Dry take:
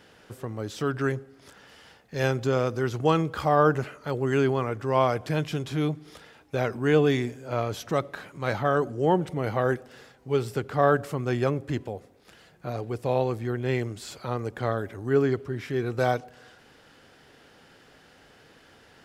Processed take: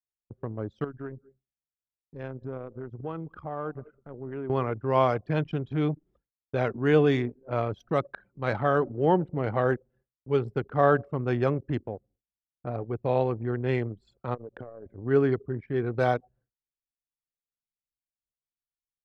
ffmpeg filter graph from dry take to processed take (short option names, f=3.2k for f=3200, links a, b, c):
-filter_complex "[0:a]asettb=1/sr,asplit=3[a][b][c];[a]atrim=end=0.844[d];[b]atrim=start=0.84:end=4.5,asetpts=PTS-STARTPTS,afade=t=in:d=0.004:c=qsin,afade=t=out:st=3.656:d=0.004:c=qsin,aecho=1:1:198:0.126,atrim=end_sample=161406,acompressor=threshold=-39dB:ratio=2:attack=3.2:release=140:knee=1:detection=peak[e];[c]atrim=start=4.496[f];[d][e]acrossfade=d=0.004:c1=hsin:c2=qsin[g];[g][f]acrossfade=d=0.004:c1=qsin:c2=hsin,asettb=1/sr,asplit=3[h][i][j];[h]atrim=end=14.344[k];[i]atrim=start=14.34:end=14.86,asetpts=PTS-STARTPTS,afade=t=in:d=0.004:c=qsin,afade=t=out:st=0.516:d=0.004:c=qsin,equalizer=f=530:w=1.7:g=7.5,acompressor=threshold=-32dB:ratio=12:attack=3.2:release=140:knee=1:detection=peak[l];[j]atrim=start=14.856[m];[k][l]acrossfade=d=0.004:c1=hsin:c2=qsin[n];[n][m]acrossfade=d=0.004:c1=qsin:c2=hsin,anlmdn=15.8,equalizer=f=8.5k:t=o:w=1.4:g=-10.5,agate=range=-33dB:threshold=-55dB:ratio=3:detection=peak"